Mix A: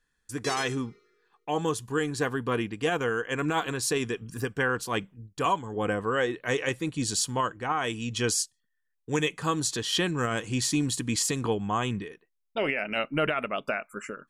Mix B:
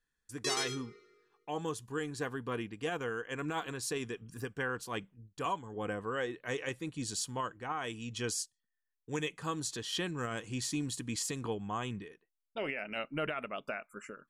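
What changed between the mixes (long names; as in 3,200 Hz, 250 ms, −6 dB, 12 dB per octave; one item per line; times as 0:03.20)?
speech −9.0 dB
background: send +6.5 dB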